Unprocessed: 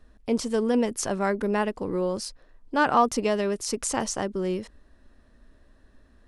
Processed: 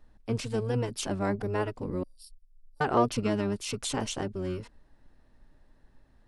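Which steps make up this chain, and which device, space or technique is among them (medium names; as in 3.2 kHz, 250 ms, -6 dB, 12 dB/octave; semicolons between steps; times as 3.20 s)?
2.03–2.81 s: inverse Chebyshev band-stop 130–4700 Hz, stop band 50 dB; octave pedal (harmony voices -12 st 0 dB); trim -7 dB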